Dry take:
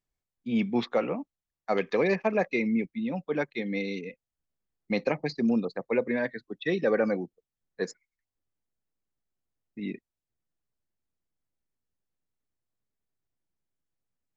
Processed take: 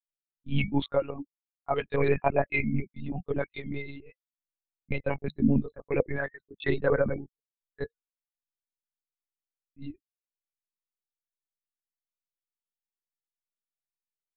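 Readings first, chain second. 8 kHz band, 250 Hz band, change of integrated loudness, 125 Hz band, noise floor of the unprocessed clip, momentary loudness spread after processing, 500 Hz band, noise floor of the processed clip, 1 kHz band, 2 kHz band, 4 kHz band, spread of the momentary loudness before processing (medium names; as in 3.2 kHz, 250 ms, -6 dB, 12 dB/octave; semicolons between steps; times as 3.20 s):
no reading, -2.5 dB, -0.5 dB, +7.0 dB, under -85 dBFS, 19 LU, -1.0 dB, under -85 dBFS, +1.0 dB, -0.5 dB, -2.0 dB, 13 LU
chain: expander on every frequency bin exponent 2; monotone LPC vocoder at 8 kHz 140 Hz; trim +4.5 dB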